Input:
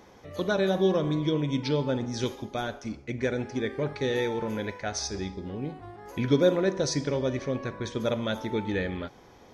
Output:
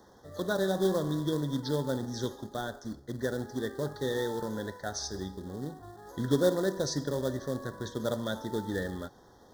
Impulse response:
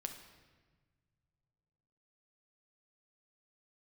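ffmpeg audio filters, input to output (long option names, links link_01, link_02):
-filter_complex "[0:a]acrossover=split=210|1700[link_01][link_02][link_03];[link_02]acrusher=bits=3:mode=log:mix=0:aa=0.000001[link_04];[link_01][link_04][link_03]amix=inputs=3:normalize=0,asuperstop=centerf=2500:order=12:qfactor=1.8,volume=-4dB"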